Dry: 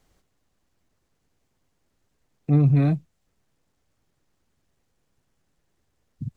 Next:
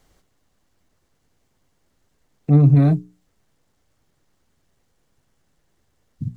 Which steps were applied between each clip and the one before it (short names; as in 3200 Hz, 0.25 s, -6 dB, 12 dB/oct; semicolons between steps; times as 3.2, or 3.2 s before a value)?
notch 2500 Hz, Q 24; dynamic EQ 2600 Hz, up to -6 dB, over -52 dBFS, Q 0.94; notches 60/120/180/240/300/360/420 Hz; gain +5.5 dB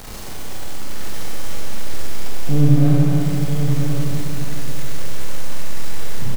zero-crossing step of -23.5 dBFS; echo 0.992 s -7 dB; Schroeder reverb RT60 3.7 s, combs from 30 ms, DRR -5.5 dB; gain -7 dB